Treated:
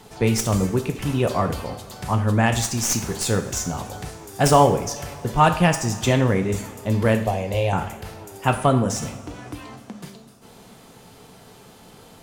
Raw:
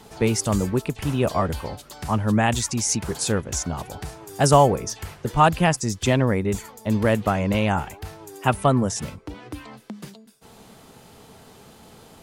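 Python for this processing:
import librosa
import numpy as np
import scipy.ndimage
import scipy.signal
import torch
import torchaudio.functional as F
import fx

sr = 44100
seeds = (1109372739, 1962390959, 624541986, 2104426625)

y = fx.tracing_dist(x, sr, depth_ms=0.03)
y = fx.fixed_phaser(y, sr, hz=570.0, stages=4, at=(7.23, 7.73))
y = fx.rev_double_slope(y, sr, seeds[0], early_s=0.54, late_s=4.8, knee_db=-21, drr_db=5.0)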